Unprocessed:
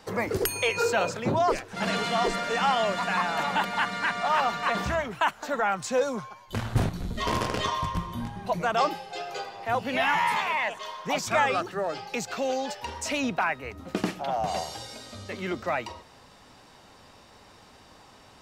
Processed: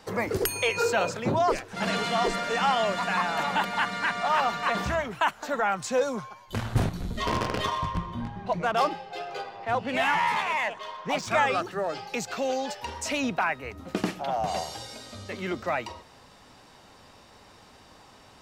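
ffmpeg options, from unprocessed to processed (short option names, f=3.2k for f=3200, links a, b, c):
-filter_complex "[0:a]asettb=1/sr,asplit=3[a][b][c];[a]atrim=end=7.254[d];[b]atrim=start=7.25:end=11.28,asetpts=PTS-STARTPTS,afade=t=in:d=0.004:c=qsin,afade=t=out:st=4.026:d=0.004:c=qsin,adynamicsmooth=sensitivity=5.5:basefreq=3.6k[e];[c]atrim=start=11.276[f];[d][e]acrossfade=d=0.004:c1=hsin:c2=qsin[g];[g][f]acrossfade=d=0.004:c1=qsin:c2=hsin"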